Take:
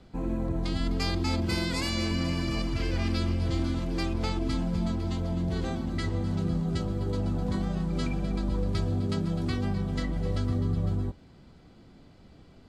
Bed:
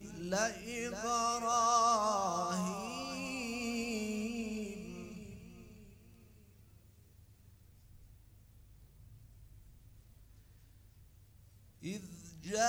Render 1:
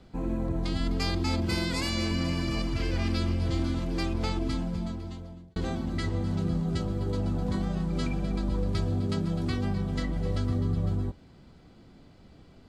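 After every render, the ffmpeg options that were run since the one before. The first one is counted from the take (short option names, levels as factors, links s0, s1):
-filter_complex "[0:a]asplit=2[s0][s1];[s0]atrim=end=5.56,asetpts=PTS-STARTPTS,afade=t=out:st=4.39:d=1.17[s2];[s1]atrim=start=5.56,asetpts=PTS-STARTPTS,afade=t=in:d=0.004:c=hsin[s3];[s2][s3]concat=n=2:v=0:a=1"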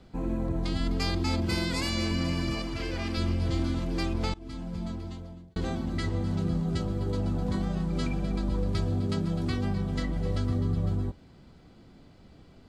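-filter_complex "[0:a]asettb=1/sr,asplit=3[s0][s1][s2];[s0]atrim=end=2.544[s3];[s1]atrim=start=2.54:end=3.18,asetpts=PTS-STARTPTS,afade=t=in:d=0.004:c=qsin,afade=t=out:st=0.636:d=0.004:c=qsin,bass=f=250:g=-6,treble=f=4000:g=-1[s4];[s2]atrim=start=3.176[s5];[s3][s4]acrossfade=d=0.004:c1=hsin:c2=qsin[s6];[s6][s5]acrossfade=d=0.004:c1=qsin:c2=hsin,asplit=2[s7][s8];[s7]atrim=end=4.34,asetpts=PTS-STARTPTS,afade=t=out:st=4.336:d=0.004:c=hsin:silence=0.0668344[s9];[s8]atrim=start=4.34,asetpts=PTS-STARTPTS,afade=t=in:d=0.61:silence=0.0668344[s10];[s9][s10]concat=n=2:v=0:a=1"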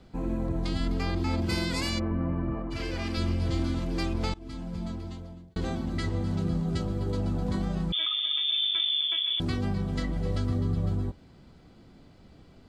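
-filter_complex "[0:a]asettb=1/sr,asplit=3[s0][s1][s2];[s0]atrim=end=0.854[s3];[s1]atrim=start=0.85:end=1.42,asetpts=PTS-STARTPTS,afade=t=in:d=0.004:c=qsin,afade=t=out:st=0.566:d=0.004:c=qsin,acrossover=split=2700[s4][s5];[s5]acompressor=threshold=0.00631:ratio=4:attack=1:release=60[s6];[s4][s6]amix=inputs=2:normalize=0[s7];[s2]atrim=start=1.416[s8];[s3][s7]acrossfade=d=0.004:c1=hsin:c2=qsin[s9];[s9][s8]acrossfade=d=0.004:c1=qsin:c2=hsin,asplit=3[s10][s11][s12];[s10]afade=t=out:st=1.98:d=0.02[s13];[s11]lowpass=f=1400:w=0.5412,lowpass=f=1400:w=1.3066,afade=t=in:st=1.98:d=0.02,afade=t=out:st=2.7:d=0.02[s14];[s12]afade=t=in:st=2.7:d=0.02[s15];[s13][s14][s15]amix=inputs=3:normalize=0,asettb=1/sr,asplit=3[s16][s17][s18];[s16]atrim=end=7.924[s19];[s17]atrim=start=7.92:end=9.4,asetpts=PTS-STARTPTS,afade=t=in:d=0.004:c=qsin,afade=t=out:st=1.476:d=0.004:c=qsin,lowpass=f=3100:t=q:w=0.5098,lowpass=f=3100:t=q:w=0.6013,lowpass=f=3100:t=q:w=0.9,lowpass=f=3100:t=q:w=2.563,afreqshift=-3600[s20];[s18]atrim=start=9.396[s21];[s19][s20]acrossfade=d=0.004:c1=hsin:c2=qsin[s22];[s22][s21]acrossfade=d=0.004:c1=qsin:c2=hsin"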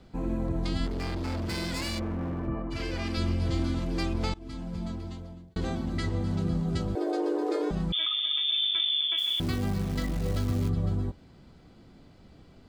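-filter_complex "[0:a]asettb=1/sr,asplit=3[s0][s1][s2];[s0]atrim=end=0.864[s3];[s1]atrim=start=0.86:end=2.48,asetpts=PTS-STARTPTS,afade=t=in:d=0.004:c=qsin,afade=t=out:st=1.616:d=0.004:c=qsin,asoftclip=type=hard:threshold=0.0355[s4];[s2]atrim=start=2.476[s5];[s3][s4]acrossfade=d=0.004:c1=hsin:c2=qsin[s6];[s6][s5]acrossfade=d=0.004:c1=qsin:c2=hsin,asettb=1/sr,asplit=3[s7][s8][s9];[s7]atrim=end=6.954[s10];[s8]atrim=start=6.95:end=7.71,asetpts=PTS-STARTPTS,afade=t=in:d=0.004:c=qsin,afade=t=out:st=0.756:d=0.004:c=qsin,afreqshift=250[s11];[s9]atrim=start=7.706[s12];[s10][s11]acrossfade=d=0.004:c1=hsin:c2=qsin[s13];[s13][s12]acrossfade=d=0.004:c1=qsin:c2=hsin,asplit=3[s14][s15][s16];[s14]afade=t=out:st=9.17:d=0.02[s17];[s15]acrusher=bits=8:dc=4:mix=0:aa=0.000001,afade=t=in:st=9.17:d=0.02,afade=t=out:st=10.68:d=0.02[s18];[s16]afade=t=in:st=10.68:d=0.02[s19];[s17][s18][s19]amix=inputs=3:normalize=0"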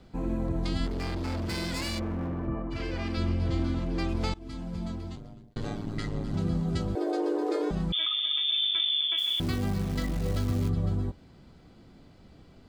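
-filter_complex "[0:a]asettb=1/sr,asplit=3[s0][s1][s2];[s0]atrim=end=2.274[s3];[s1]atrim=start=2.27:end=4.09,asetpts=PTS-STARTPTS,afade=t=in:d=0.004:c=qsin,afade=t=out:st=1.816:d=0.004:c=qsin,highshelf=f=5000:g=-10[s4];[s2]atrim=start=4.086[s5];[s3][s4]acrossfade=d=0.004:c1=hsin:c2=qsin[s6];[s6][s5]acrossfade=d=0.004:c1=qsin:c2=hsin,asettb=1/sr,asplit=3[s7][s8][s9];[s7]atrim=end=5.154[s10];[s8]atrim=start=5.15:end=6.34,asetpts=PTS-STARTPTS,afade=t=in:d=0.004:c=qsin,afade=t=out:st=1.186:d=0.004:c=qsin,aeval=exprs='val(0)*sin(2*PI*53*n/s)':c=same[s11];[s9]atrim=start=6.336[s12];[s10][s11]acrossfade=d=0.004:c1=hsin:c2=qsin[s13];[s13][s12]acrossfade=d=0.004:c1=qsin:c2=hsin"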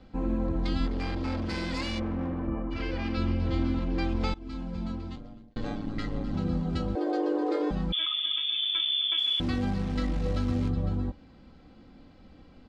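-af "lowpass=4600,aecho=1:1:3.8:0.47"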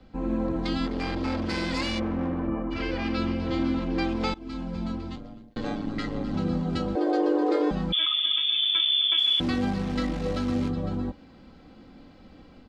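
-filter_complex "[0:a]acrossover=split=160[s0][s1];[s0]alimiter=level_in=2:limit=0.0631:level=0:latency=1:release=416,volume=0.501[s2];[s1]dynaudnorm=f=180:g=3:m=1.68[s3];[s2][s3]amix=inputs=2:normalize=0"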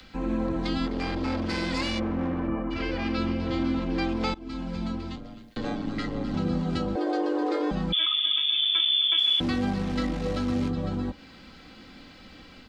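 -filter_complex "[0:a]acrossover=split=280|660|1400[s0][s1][s2][s3];[s1]alimiter=level_in=1.41:limit=0.0631:level=0:latency=1:release=45,volume=0.708[s4];[s3]acompressor=mode=upward:threshold=0.00891:ratio=2.5[s5];[s0][s4][s2][s5]amix=inputs=4:normalize=0"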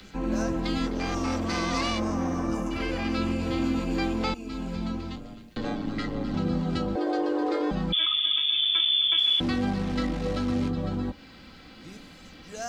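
-filter_complex "[1:a]volume=0.596[s0];[0:a][s0]amix=inputs=2:normalize=0"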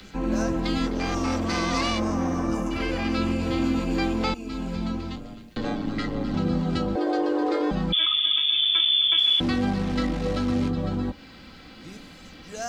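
-af "volume=1.33"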